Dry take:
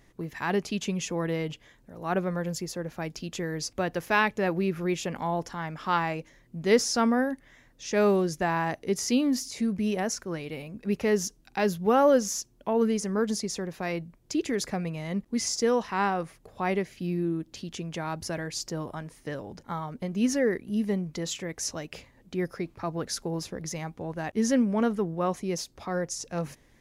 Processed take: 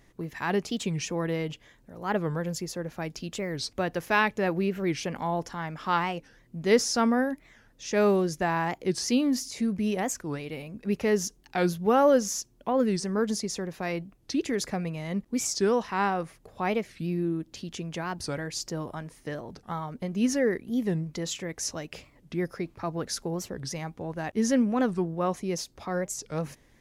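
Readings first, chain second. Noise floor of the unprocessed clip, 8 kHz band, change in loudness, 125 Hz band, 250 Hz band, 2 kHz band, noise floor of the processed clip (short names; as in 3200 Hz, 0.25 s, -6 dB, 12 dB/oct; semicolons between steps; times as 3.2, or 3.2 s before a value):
-61 dBFS, 0.0 dB, 0.0 dB, +0.5 dB, 0.0 dB, 0.0 dB, -61 dBFS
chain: record warp 45 rpm, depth 250 cents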